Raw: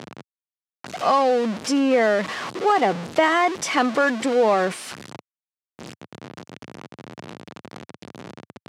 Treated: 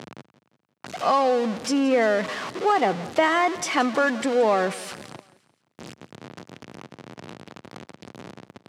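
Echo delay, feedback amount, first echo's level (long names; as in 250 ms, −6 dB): 174 ms, 46%, −18.0 dB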